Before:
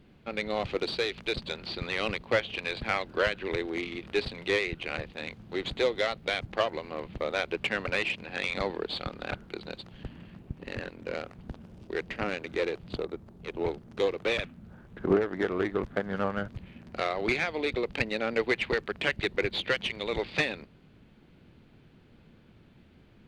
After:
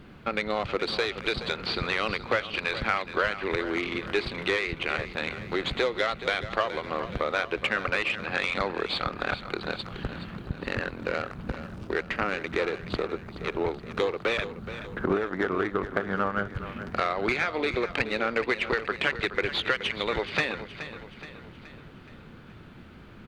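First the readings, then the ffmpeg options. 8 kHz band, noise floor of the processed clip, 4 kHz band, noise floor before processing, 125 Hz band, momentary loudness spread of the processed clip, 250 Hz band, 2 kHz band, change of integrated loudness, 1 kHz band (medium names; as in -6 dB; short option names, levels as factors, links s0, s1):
+1.0 dB, -48 dBFS, +2.5 dB, -58 dBFS, +3.0 dB, 12 LU, +2.0 dB, +3.5 dB, +2.0 dB, +5.5 dB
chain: -af "equalizer=f=1300:t=o:w=0.85:g=8,acompressor=threshold=0.0158:ratio=2.5,aecho=1:1:423|846|1269|1692|2115:0.237|0.121|0.0617|0.0315|0.016,volume=2.66"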